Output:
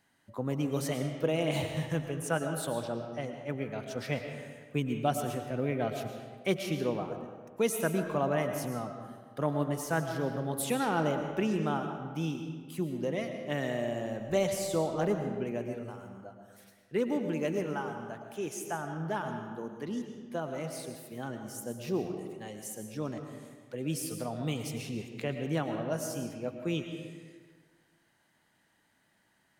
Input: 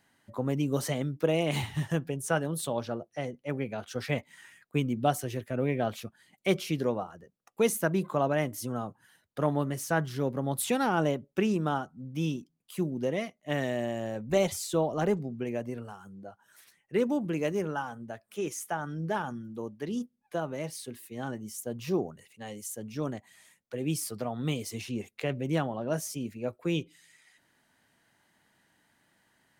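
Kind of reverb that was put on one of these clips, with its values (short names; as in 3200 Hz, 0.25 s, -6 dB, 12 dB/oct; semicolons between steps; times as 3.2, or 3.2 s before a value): digital reverb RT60 1.6 s, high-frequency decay 0.65×, pre-delay 75 ms, DRR 5.5 dB; gain -3 dB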